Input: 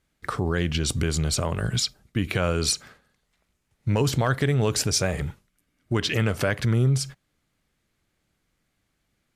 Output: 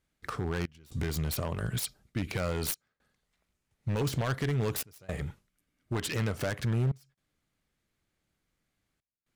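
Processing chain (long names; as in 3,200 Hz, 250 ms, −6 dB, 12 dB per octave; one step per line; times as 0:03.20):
phase distortion by the signal itself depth 0.14 ms
gate pattern "xxxxx..xxxxxxxxx" 115 BPM −24 dB
wave folding −16.5 dBFS
level −6.5 dB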